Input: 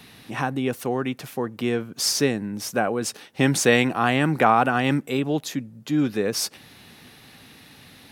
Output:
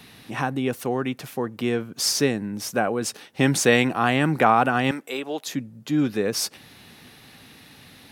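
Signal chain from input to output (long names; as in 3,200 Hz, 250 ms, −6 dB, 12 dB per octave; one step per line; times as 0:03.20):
0:04.91–0:05.47: high-pass filter 470 Hz 12 dB per octave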